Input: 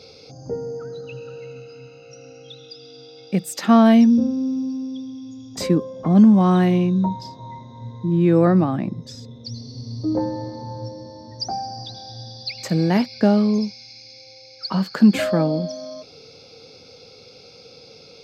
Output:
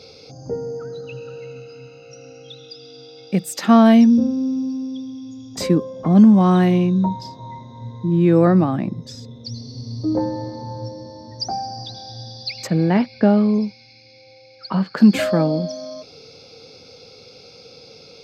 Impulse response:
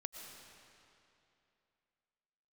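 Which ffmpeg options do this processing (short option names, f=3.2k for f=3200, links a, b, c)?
-filter_complex "[0:a]asplit=3[a][b][c];[a]afade=t=out:st=12.66:d=0.02[d];[b]lowpass=2.9k,afade=t=in:st=12.66:d=0.02,afade=t=out:st=14.96:d=0.02[e];[c]afade=t=in:st=14.96:d=0.02[f];[d][e][f]amix=inputs=3:normalize=0,volume=1.5dB"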